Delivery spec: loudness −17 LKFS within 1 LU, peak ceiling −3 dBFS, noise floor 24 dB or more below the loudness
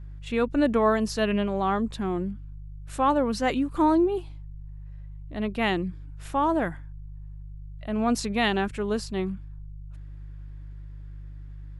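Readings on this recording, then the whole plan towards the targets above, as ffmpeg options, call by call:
mains hum 50 Hz; hum harmonics up to 150 Hz; level of the hum −37 dBFS; integrated loudness −26.0 LKFS; sample peak −10.0 dBFS; target loudness −17.0 LKFS
→ -af "bandreject=frequency=50:width_type=h:width=4,bandreject=frequency=100:width_type=h:width=4,bandreject=frequency=150:width_type=h:width=4"
-af "volume=9dB,alimiter=limit=-3dB:level=0:latency=1"

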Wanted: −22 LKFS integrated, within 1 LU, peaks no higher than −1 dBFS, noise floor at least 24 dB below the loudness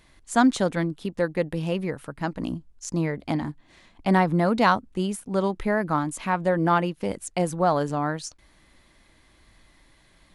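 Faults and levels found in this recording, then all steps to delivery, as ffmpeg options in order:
integrated loudness −25.5 LKFS; sample peak −6.0 dBFS; target loudness −22.0 LKFS
→ -af "volume=3.5dB"

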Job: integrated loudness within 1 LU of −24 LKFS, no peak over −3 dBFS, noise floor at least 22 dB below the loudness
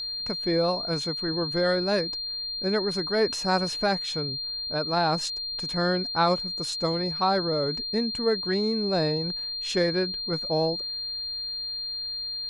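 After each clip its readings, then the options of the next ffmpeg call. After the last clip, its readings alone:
interfering tone 4,200 Hz; level of the tone −30 dBFS; integrated loudness −26.5 LKFS; sample peak −10.5 dBFS; target loudness −24.0 LKFS
→ -af "bandreject=frequency=4200:width=30"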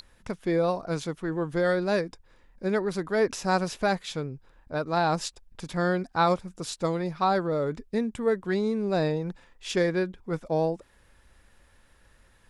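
interfering tone none found; integrated loudness −28.0 LKFS; sample peak −11.5 dBFS; target loudness −24.0 LKFS
→ -af "volume=4dB"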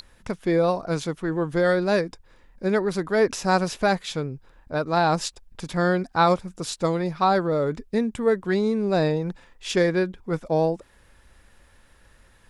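integrated loudness −24.0 LKFS; sample peak −7.5 dBFS; background noise floor −57 dBFS

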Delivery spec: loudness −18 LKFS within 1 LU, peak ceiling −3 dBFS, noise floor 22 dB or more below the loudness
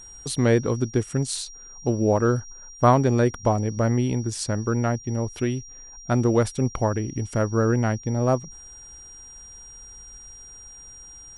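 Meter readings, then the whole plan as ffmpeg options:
interfering tone 5,700 Hz; level of the tone −42 dBFS; integrated loudness −23.5 LKFS; sample peak −5.0 dBFS; target loudness −18.0 LKFS
→ -af "bandreject=frequency=5700:width=30"
-af "volume=5.5dB,alimiter=limit=-3dB:level=0:latency=1"

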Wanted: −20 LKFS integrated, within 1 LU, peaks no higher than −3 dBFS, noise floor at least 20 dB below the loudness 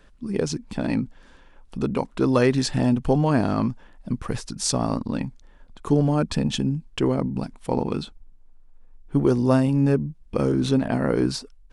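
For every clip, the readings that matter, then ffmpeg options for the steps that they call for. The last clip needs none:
integrated loudness −23.5 LKFS; sample peak −5.5 dBFS; target loudness −20.0 LKFS
→ -af "volume=3.5dB,alimiter=limit=-3dB:level=0:latency=1"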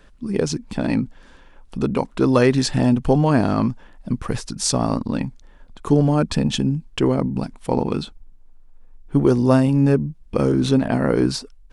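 integrated loudness −20.5 LKFS; sample peak −3.0 dBFS; background noise floor −48 dBFS

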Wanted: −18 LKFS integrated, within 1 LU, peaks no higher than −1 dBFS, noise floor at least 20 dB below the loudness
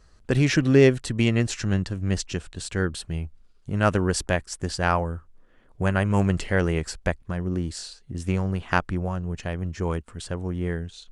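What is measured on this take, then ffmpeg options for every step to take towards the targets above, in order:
integrated loudness −25.5 LKFS; sample peak −4.0 dBFS; target loudness −18.0 LKFS
→ -af "volume=7.5dB,alimiter=limit=-1dB:level=0:latency=1"

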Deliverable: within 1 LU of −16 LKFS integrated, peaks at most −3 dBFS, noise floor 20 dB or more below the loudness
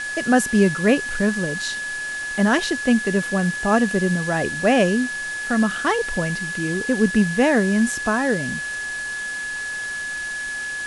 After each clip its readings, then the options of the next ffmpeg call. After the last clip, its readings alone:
interfering tone 1,700 Hz; level of the tone −26 dBFS; background noise floor −29 dBFS; target noise floor −41 dBFS; integrated loudness −21.0 LKFS; sample peak −4.5 dBFS; target loudness −16.0 LKFS
→ -af "bandreject=frequency=1700:width=30"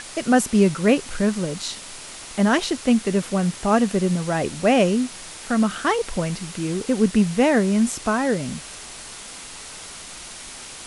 interfering tone none found; background noise floor −38 dBFS; target noise floor −41 dBFS
→ -af "afftdn=noise_reduction=6:noise_floor=-38"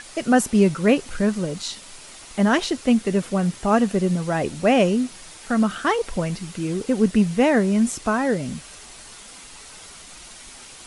background noise floor −43 dBFS; integrated loudness −21.0 LKFS; sample peak −5.0 dBFS; target loudness −16.0 LKFS
→ -af "volume=5dB,alimiter=limit=-3dB:level=0:latency=1"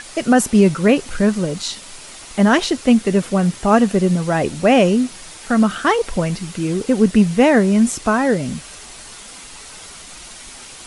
integrated loudness −16.5 LKFS; sample peak −3.0 dBFS; background noise floor −38 dBFS

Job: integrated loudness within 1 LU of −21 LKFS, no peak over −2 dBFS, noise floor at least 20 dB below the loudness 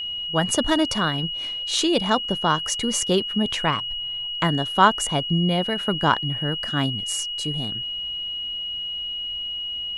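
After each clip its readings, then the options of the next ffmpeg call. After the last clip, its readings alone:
interfering tone 2,900 Hz; level of the tone −27 dBFS; integrated loudness −23.0 LKFS; sample peak −2.5 dBFS; target loudness −21.0 LKFS
→ -af "bandreject=frequency=2900:width=30"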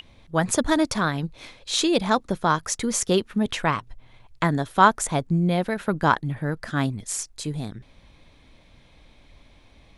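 interfering tone none found; integrated loudness −24.0 LKFS; sample peak −2.5 dBFS; target loudness −21.0 LKFS
→ -af "volume=3dB,alimiter=limit=-2dB:level=0:latency=1"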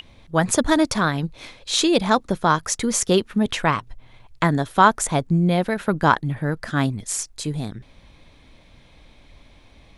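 integrated loudness −21.0 LKFS; sample peak −2.0 dBFS; background noise floor −52 dBFS

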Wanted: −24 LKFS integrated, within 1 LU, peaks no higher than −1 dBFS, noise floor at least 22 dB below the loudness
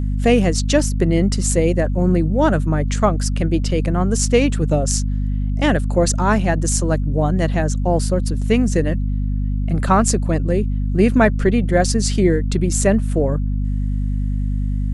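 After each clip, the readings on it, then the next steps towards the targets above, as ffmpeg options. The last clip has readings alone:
mains hum 50 Hz; hum harmonics up to 250 Hz; level of the hum −17 dBFS; integrated loudness −18.5 LKFS; sample peak −2.0 dBFS; target loudness −24.0 LKFS
→ -af "bandreject=frequency=50:width_type=h:width=6,bandreject=frequency=100:width_type=h:width=6,bandreject=frequency=150:width_type=h:width=6,bandreject=frequency=200:width_type=h:width=6,bandreject=frequency=250:width_type=h:width=6"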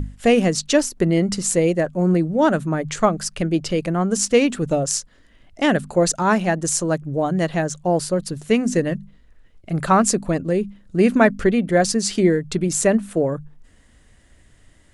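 mains hum none found; integrated loudness −20.0 LKFS; sample peak −2.5 dBFS; target loudness −24.0 LKFS
→ -af "volume=-4dB"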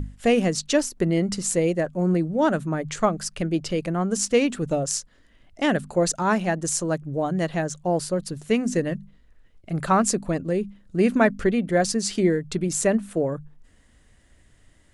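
integrated loudness −24.0 LKFS; sample peak −6.5 dBFS; background noise floor −57 dBFS

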